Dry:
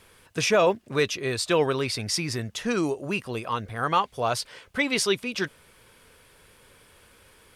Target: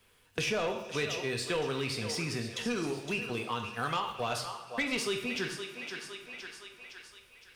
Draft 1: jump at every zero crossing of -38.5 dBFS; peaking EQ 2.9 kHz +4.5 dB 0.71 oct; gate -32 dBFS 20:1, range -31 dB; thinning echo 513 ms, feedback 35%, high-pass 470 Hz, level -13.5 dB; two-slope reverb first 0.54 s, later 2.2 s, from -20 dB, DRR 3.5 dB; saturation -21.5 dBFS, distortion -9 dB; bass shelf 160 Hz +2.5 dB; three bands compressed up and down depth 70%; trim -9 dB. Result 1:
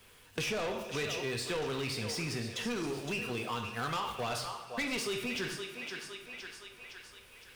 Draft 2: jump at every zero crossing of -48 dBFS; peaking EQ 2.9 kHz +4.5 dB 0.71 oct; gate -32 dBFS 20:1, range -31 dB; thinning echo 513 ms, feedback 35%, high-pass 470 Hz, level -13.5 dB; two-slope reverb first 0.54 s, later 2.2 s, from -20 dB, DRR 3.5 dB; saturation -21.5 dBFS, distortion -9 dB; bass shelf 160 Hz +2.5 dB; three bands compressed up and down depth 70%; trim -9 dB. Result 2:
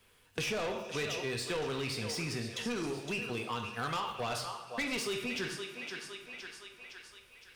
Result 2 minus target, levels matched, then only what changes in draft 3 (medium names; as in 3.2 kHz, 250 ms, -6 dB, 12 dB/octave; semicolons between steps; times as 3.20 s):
saturation: distortion +7 dB
change: saturation -14.5 dBFS, distortion -17 dB